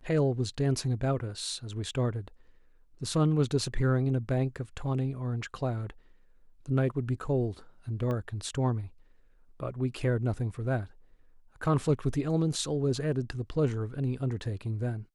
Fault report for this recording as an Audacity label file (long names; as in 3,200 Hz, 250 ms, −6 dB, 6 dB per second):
8.110000	8.110000	click −23 dBFS